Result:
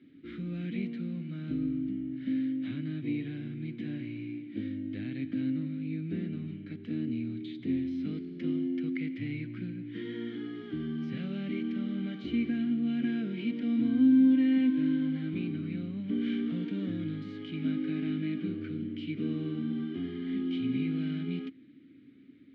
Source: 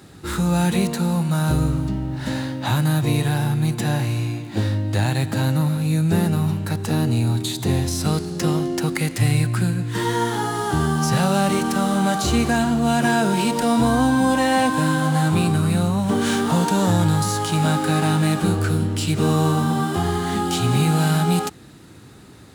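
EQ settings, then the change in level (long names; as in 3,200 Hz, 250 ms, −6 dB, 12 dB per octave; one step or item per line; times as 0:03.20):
formant filter i
high-frequency loss of the air 330 metres
0.0 dB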